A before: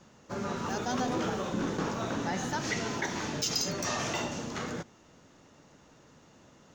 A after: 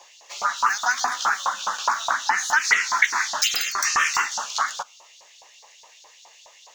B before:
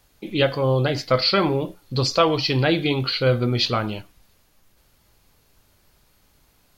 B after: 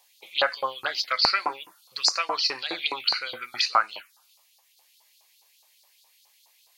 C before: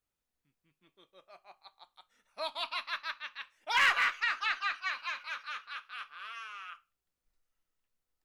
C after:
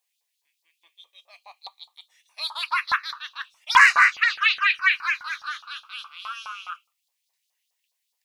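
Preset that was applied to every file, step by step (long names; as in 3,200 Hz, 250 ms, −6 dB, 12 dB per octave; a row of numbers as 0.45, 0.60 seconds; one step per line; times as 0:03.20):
auto-filter high-pass saw up 4.8 Hz 880–4,600 Hz
phaser swept by the level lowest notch 230 Hz, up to 3,300 Hz, full sweep at −20.5 dBFS
normalise the peak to −3 dBFS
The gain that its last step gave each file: +14.5, +2.0, +12.0 decibels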